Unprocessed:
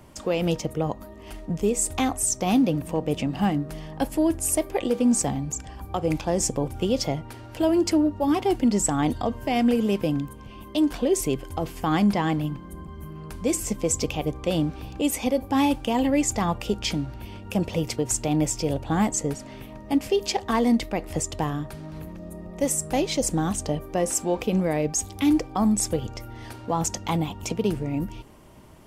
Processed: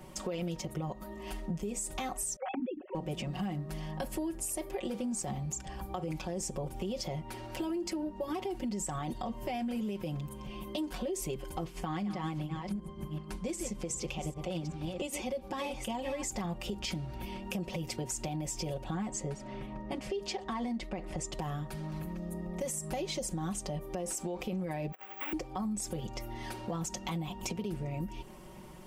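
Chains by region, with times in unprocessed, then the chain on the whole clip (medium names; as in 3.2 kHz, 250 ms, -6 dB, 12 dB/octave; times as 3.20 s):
2.36–2.95 s: formants replaced by sine waves + tilt EQ -1.5 dB/octave
11.64–16.23 s: chunks repeated in reverse 385 ms, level -8 dB + low-pass 10 kHz + tremolo 6.5 Hz, depth 54%
18.94–21.33 s: low-pass 11 kHz 24 dB/octave + treble shelf 6.4 kHz -8.5 dB + tape noise reduction on one side only decoder only
24.92–25.33 s: CVSD coder 16 kbps + high-pass 700 Hz + careless resampling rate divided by 2×, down none, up zero stuff
whole clip: comb 5.4 ms, depth 94%; peak limiter -17 dBFS; compression 3:1, threshold -33 dBFS; trim -2.5 dB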